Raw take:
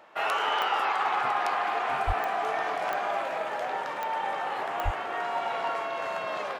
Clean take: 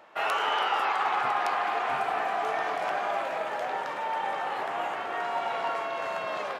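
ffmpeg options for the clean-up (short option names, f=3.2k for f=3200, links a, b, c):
-filter_complex "[0:a]adeclick=t=4,asplit=3[a][b][c];[a]afade=t=out:st=2.06:d=0.02[d];[b]highpass=f=140:w=0.5412,highpass=f=140:w=1.3066,afade=t=in:st=2.06:d=0.02,afade=t=out:st=2.18:d=0.02[e];[c]afade=t=in:st=2.18:d=0.02[f];[d][e][f]amix=inputs=3:normalize=0,asplit=3[g][h][i];[g]afade=t=out:st=4.84:d=0.02[j];[h]highpass=f=140:w=0.5412,highpass=f=140:w=1.3066,afade=t=in:st=4.84:d=0.02,afade=t=out:st=4.96:d=0.02[k];[i]afade=t=in:st=4.96:d=0.02[l];[j][k][l]amix=inputs=3:normalize=0"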